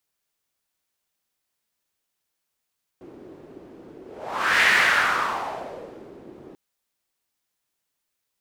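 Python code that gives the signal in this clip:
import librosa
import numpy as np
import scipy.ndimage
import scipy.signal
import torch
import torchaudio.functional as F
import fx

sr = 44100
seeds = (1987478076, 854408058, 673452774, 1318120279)

y = fx.whoosh(sr, seeds[0], length_s=3.54, peak_s=1.63, rise_s=0.65, fall_s=1.69, ends_hz=350.0, peak_hz=1900.0, q=3.0, swell_db=26.5)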